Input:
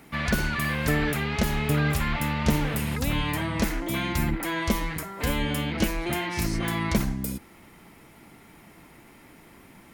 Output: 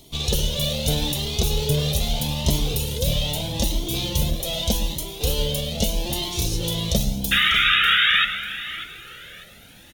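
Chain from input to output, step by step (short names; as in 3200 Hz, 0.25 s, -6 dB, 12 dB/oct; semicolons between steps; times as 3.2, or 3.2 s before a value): minimum comb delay 0.32 ms; EQ curve 140 Hz 0 dB, 300 Hz -6 dB, 510 Hz +5 dB, 1300 Hz -13 dB, 2200 Hz -10 dB, 3600 Hz +9 dB, 8300 Hz +5 dB; painted sound noise, 7.31–8.25, 1200–3800 Hz -21 dBFS; feedback echo 0.595 s, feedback 29%, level -14 dB; reverb RT60 1.0 s, pre-delay 92 ms, DRR 11 dB; cascading flanger rising 0.8 Hz; gain +7 dB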